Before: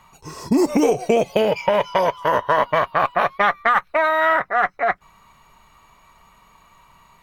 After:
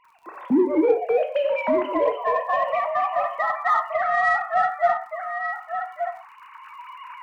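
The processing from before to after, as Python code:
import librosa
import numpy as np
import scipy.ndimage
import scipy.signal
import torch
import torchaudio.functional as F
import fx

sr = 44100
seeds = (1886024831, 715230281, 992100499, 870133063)

p1 = fx.sine_speech(x, sr)
p2 = fx.recorder_agc(p1, sr, target_db=-10.0, rise_db_per_s=9.2, max_gain_db=30)
p3 = p2 + 10.0 ** (-8.5 / 20.0) * np.pad(p2, (int(1176 * sr / 1000.0), 0))[:len(p2)]
p4 = fx.dmg_crackle(p3, sr, seeds[0], per_s=76.0, level_db=-43.0)
p5 = fx.rev_gated(p4, sr, seeds[1], gate_ms=200, shape='falling', drr_db=5.0)
p6 = 10.0 ** (-17.5 / 20.0) * np.tanh(p5 / 10.0 ** (-17.5 / 20.0))
p7 = p5 + (p6 * librosa.db_to_amplitude(-8.5))
y = p7 * librosa.db_to_amplitude(-6.5)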